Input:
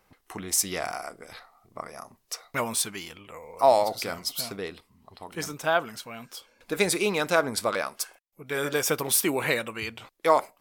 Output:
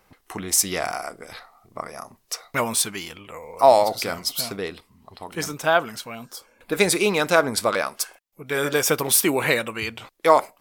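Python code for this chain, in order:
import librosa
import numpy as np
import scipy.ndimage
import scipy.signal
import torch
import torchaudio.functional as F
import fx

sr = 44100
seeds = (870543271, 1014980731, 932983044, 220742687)

y = fx.peak_eq(x, sr, hz=fx.line((6.14, 1600.0), (6.72, 6700.0)), db=-14.0, octaves=0.58, at=(6.14, 6.72), fade=0.02)
y = F.gain(torch.from_numpy(y), 5.0).numpy()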